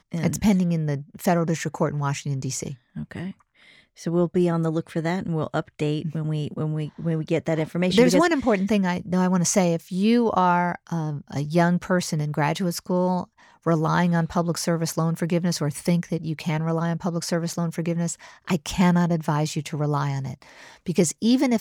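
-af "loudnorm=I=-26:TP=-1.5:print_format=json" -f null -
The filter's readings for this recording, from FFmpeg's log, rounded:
"input_i" : "-23.6",
"input_tp" : "-4.4",
"input_lra" : "4.8",
"input_thresh" : "-34.0",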